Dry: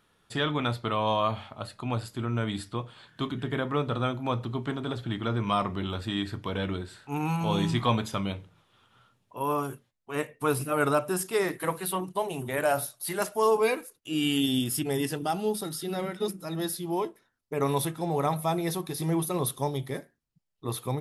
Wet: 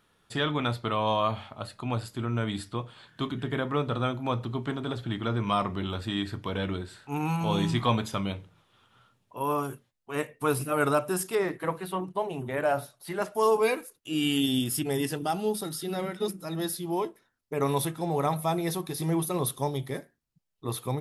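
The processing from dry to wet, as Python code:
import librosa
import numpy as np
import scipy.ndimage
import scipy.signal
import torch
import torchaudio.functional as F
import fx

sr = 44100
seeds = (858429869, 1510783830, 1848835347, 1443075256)

y = fx.lowpass(x, sr, hz=2100.0, slope=6, at=(11.35, 13.35))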